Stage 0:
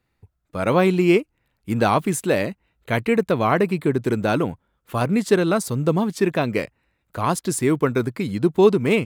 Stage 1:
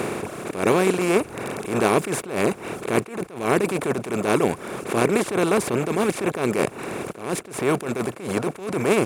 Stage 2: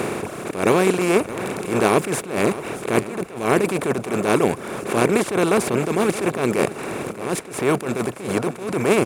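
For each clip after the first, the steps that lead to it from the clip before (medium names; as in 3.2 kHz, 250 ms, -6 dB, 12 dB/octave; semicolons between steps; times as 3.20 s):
spectral levelling over time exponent 0.2; reverb removal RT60 0.87 s; attacks held to a fixed rise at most 110 dB/s; trim -6.5 dB
feedback delay 620 ms, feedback 33%, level -15 dB; trim +2 dB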